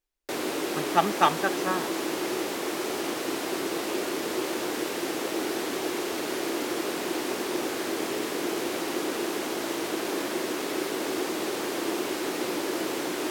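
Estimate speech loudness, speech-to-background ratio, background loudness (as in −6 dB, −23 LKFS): −26.5 LKFS, 3.5 dB, −30.0 LKFS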